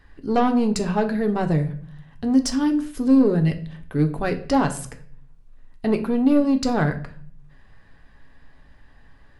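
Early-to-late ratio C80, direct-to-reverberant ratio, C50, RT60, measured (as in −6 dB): 17.5 dB, 5.0 dB, 13.0 dB, 0.50 s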